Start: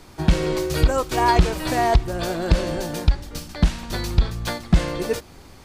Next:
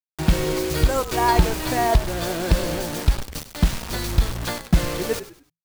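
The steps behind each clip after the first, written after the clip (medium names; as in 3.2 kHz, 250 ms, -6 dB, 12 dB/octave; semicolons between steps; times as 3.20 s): bit crusher 5-bit; frequency-shifting echo 100 ms, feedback 32%, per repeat -56 Hz, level -13.5 dB; trim -1 dB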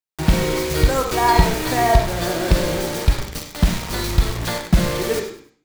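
on a send at -2.5 dB: Bessel low-pass 9.2 kHz + reverberation RT60 0.45 s, pre-delay 43 ms; on the sum: trim +2 dB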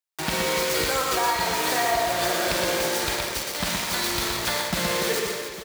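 high-pass 850 Hz 6 dB/octave; compression, threshold -23 dBFS, peak gain reduction 9 dB; on a send: reverse bouncing-ball echo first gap 120 ms, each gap 1.4×, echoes 5; on the sum: trim +1.5 dB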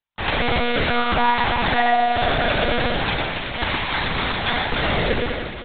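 bass shelf 240 Hz -6 dB; monotone LPC vocoder at 8 kHz 240 Hz; trim +6.5 dB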